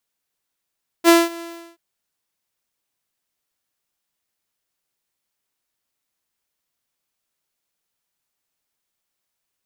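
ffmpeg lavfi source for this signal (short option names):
-f lavfi -i "aevalsrc='0.562*(2*mod(337*t,1)-1)':d=0.73:s=44100,afade=t=in:d=0.047,afade=t=out:st=0.047:d=0.201:silence=0.0708,afade=t=out:st=0.36:d=0.37"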